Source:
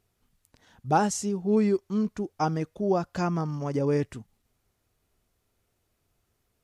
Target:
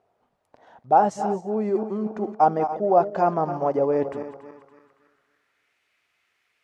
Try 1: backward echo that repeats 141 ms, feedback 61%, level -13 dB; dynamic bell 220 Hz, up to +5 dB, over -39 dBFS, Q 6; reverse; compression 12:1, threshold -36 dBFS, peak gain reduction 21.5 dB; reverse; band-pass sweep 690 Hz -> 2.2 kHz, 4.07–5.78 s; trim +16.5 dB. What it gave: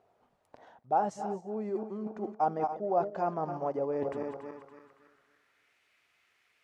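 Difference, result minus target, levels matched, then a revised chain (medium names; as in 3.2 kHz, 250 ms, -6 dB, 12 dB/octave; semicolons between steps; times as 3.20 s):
compression: peak gain reduction +10.5 dB
backward echo that repeats 141 ms, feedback 61%, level -13 dB; dynamic bell 220 Hz, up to +5 dB, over -39 dBFS, Q 6; reverse; compression 12:1, threshold -24.5 dBFS, peak gain reduction 11 dB; reverse; band-pass sweep 690 Hz -> 2.2 kHz, 4.07–5.78 s; trim +16.5 dB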